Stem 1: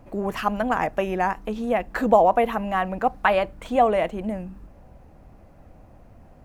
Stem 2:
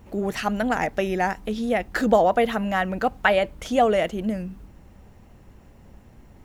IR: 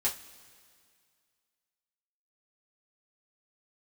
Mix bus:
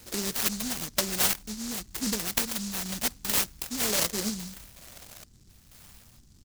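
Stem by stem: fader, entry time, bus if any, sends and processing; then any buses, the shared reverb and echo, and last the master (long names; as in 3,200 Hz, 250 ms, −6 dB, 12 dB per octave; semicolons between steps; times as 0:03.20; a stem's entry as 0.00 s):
+0.5 dB, 0.00 s, no send, downward compressor 12 to 1, threshold −29 dBFS, peak gain reduction 18.5 dB; high-pass on a step sequencer 2.1 Hz 470–4,500 Hz
−8.5 dB, 1.7 ms, no send, parametric band 590 Hz −14 dB 0.32 octaves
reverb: not used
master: auto-filter low-pass saw down 0.91 Hz 440–2,300 Hz; octave-band graphic EQ 125/500/1,000/2,000/4,000 Hz +3/−6/−6/+11/−10 dB; short delay modulated by noise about 5,700 Hz, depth 0.42 ms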